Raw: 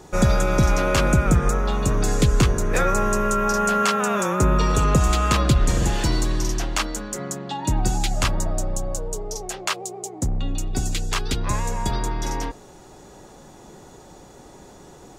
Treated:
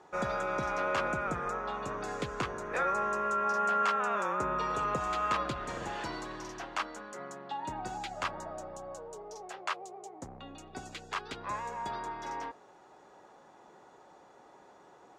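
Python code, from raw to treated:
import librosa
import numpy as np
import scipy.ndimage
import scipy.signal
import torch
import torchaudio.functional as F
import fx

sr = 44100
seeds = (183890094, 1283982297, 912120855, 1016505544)

y = fx.bandpass_q(x, sr, hz=1100.0, q=0.86)
y = y * 10.0 ** (-6.0 / 20.0)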